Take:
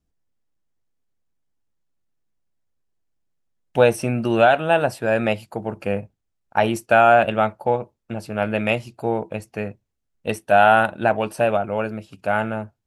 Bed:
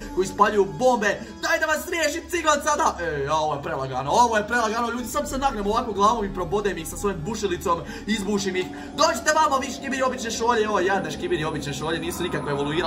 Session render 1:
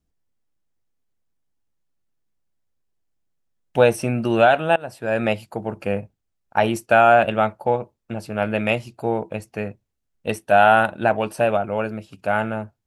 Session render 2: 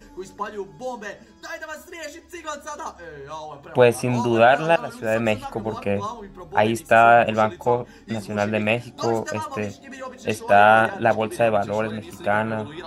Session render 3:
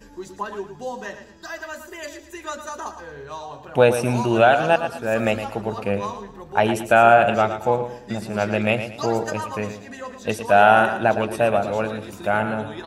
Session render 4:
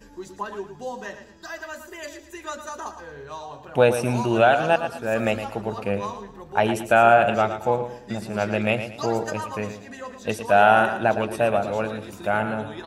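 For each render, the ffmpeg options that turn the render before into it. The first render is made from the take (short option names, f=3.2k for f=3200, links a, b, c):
-filter_complex "[0:a]asplit=2[a][b];[a]atrim=end=4.76,asetpts=PTS-STARTPTS,afade=t=out:st=4.756:d=0.004:c=hsin:silence=0.0841395[c];[b]atrim=start=4.76,asetpts=PTS-STARTPTS,afade=t=in:d=0.49:silence=0.0841395[d];[c][d]concat=n=2:v=0:a=1"
-filter_complex "[1:a]volume=-12dB[a];[0:a][a]amix=inputs=2:normalize=0"
-af "aecho=1:1:113|226|339|452:0.316|0.101|0.0324|0.0104"
-af "volume=-2dB"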